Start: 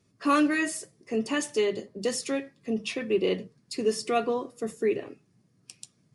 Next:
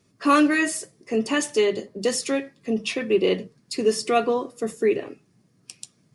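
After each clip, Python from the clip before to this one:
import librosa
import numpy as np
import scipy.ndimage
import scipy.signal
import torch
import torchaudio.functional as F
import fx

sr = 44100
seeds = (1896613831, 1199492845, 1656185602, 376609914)

y = fx.peak_eq(x, sr, hz=76.0, db=-4.0, octaves=2.2)
y = y * librosa.db_to_amplitude(5.5)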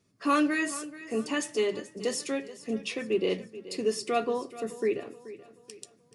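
y = fx.echo_feedback(x, sr, ms=430, feedback_pct=42, wet_db=-16.0)
y = y * librosa.db_to_amplitude(-7.0)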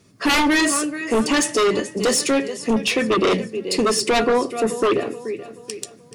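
y = fx.fold_sine(x, sr, drive_db=12, ceiling_db=-13.5)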